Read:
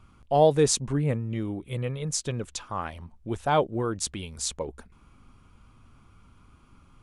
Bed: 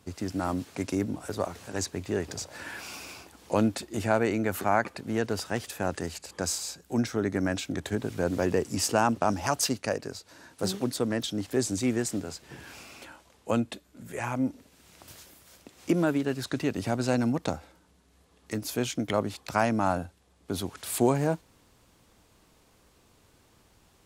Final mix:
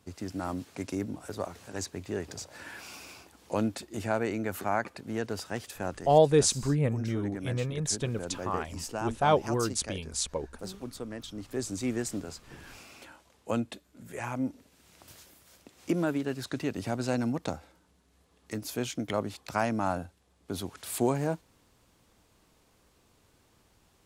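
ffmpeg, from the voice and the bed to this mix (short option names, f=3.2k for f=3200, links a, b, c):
-filter_complex "[0:a]adelay=5750,volume=-1dB[a];[1:a]volume=3dB,afade=t=out:st=5.88:d=0.2:silence=0.473151,afade=t=in:st=11.22:d=0.78:silence=0.421697[b];[a][b]amix=inputs=2:normalize=0"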